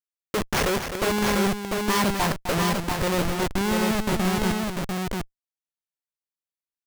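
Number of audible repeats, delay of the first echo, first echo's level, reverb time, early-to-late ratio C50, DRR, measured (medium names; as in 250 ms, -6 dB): 2, 257 ms, -8.5 dB, no reverb, no reverb, no reverb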